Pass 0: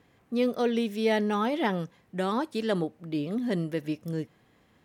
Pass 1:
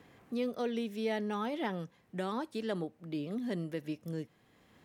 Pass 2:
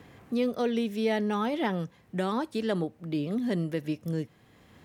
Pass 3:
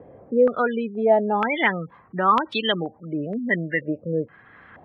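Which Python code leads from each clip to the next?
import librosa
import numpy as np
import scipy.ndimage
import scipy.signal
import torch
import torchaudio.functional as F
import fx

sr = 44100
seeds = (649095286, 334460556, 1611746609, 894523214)

y1 = fx.band_squash(x, sr, depth_pct=40)
y1 = F.gain(torch.from_numpy(y1), -8.0).numpy()
y2 = fx.peak_eq(y1, sr, hz=80.0, db=6.0, octaves=1.7)
y2 = F.gain(torch.from_numpy(y2), 6.0).numpy()
y3 = fx.spec_gate(y2, sr, threshold_db=-25, keep='strong')
y3 = fx.tilt_shelf(y3, sr, db=-6.5, hz=970.0)
y3 = fx.filter_held_lowpass(y3, sr, hz=2.1, low_hz=560.0, high_hz=3200.0)
y3 = F.gain(torch.from_numpy(y3), 7.0).numpy()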